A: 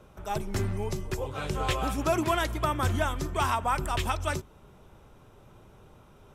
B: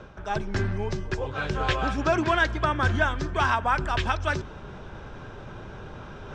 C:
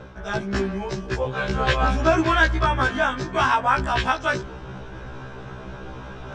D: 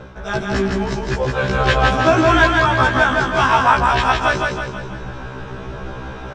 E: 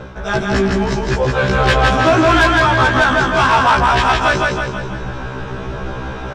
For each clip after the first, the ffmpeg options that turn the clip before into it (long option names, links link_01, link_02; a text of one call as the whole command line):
ffmpeg -i in.wav -af "equalizer=frequency=1600:width=6.9:gain=11,areverse,acompressor=mode=upward:threshold=-31dB:ratio=2.5,areverse,lowpass=frequency=5700:width=0.5412,lowpass=frequency=5700:width=1.3066,volume=2.5dB" out.wav
ffmpeg -i in.wav -af "afftfilt=real='re*1.73*eq(mod(b,3),0)':imag='im*1.73*eq(mod(b,3),0)':win_size=2048:overlap=0.75,volume=6.5dB" out.wav
ffmpeg -i in.wav -af "aecho=1:1:162|324|486|648|810|972|1134:0.708|0.354|0.177|0.0885|0.0442|0.0221|0.0111,volume=4dB" out.wav
ffmpeg -i in.wav -af "asoftclip=type=tanh:threshold=-11.5dB,volume=5dB" out.wav